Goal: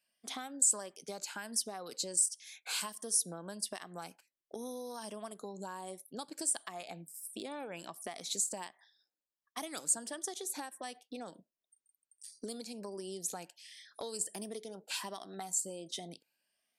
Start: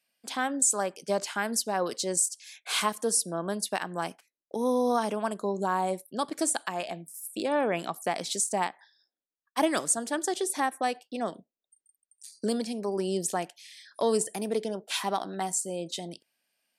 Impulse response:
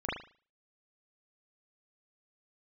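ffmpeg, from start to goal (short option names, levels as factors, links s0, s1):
-filter_complex "[0:a]afftfilt=real='re*pow(10,7/40*sin(2*PI*(1.3*log(max(b,1)*sr/1024/100)/log(2)-(1.4)*(pts-256)/sr)))':imag='im*pow(10,7/40*sin(2*PI*(1.3*log(max(b,1)*sr/1024/100)/log(2)-(1.4)*(pts-256)/sr)))':win_size=1024:overlap=0.75,acrossover=split=3800[s0][s1];[s0]acompressor=threshold=0.0158:ratio=6[s2];[s2][s1]amix=inputs=2:normalize=0,volume=0.562"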